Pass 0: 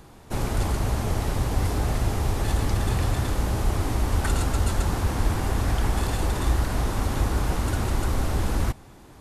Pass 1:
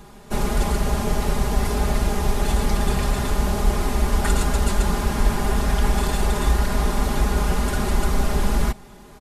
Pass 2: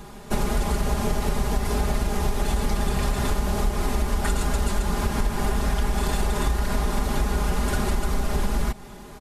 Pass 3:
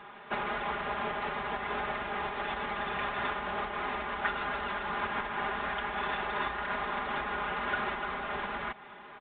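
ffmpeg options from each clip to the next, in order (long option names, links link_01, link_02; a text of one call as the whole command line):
ffmpeg -i in.wav -af "aecho=1:1:4.9:0.95,volume=1.5dB" out.wav
ffmpeg -i in.wav -af "acompressor=threshold=-22dB:ratio=6,volume=3dB" out.wav
ffmpeg -i in.wav -af "bandpass=frequency=1600:width_type=q:width=1:csg=0,volume=2dB" -ar 8000 -c:a pcm_mulaw out.wav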